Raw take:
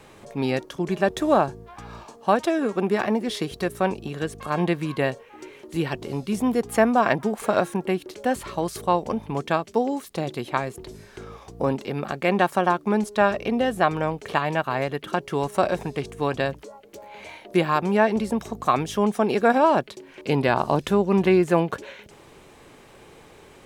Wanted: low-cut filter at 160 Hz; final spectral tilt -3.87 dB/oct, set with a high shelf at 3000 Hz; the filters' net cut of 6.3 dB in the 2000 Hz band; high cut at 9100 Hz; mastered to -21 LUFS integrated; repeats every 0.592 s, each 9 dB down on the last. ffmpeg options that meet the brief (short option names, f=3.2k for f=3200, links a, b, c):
-af "highpass=160,lowpass=9.1k,equalizer=f=2k:t=o:g=-6,highshelf=f=3k:g=-7,aecho=1:1:592|1184|1776|2368:0.355|0.124|0.0435|0.0152,volume=4dB"